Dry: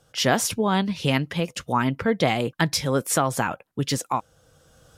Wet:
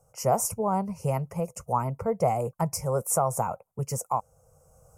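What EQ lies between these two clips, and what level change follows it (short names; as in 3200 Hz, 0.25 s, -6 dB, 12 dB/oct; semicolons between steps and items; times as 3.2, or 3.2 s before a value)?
Butterworth band-stop 3600 Hz, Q 0.69; fixed phaser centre 700 Hz, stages 4; 0.0 dB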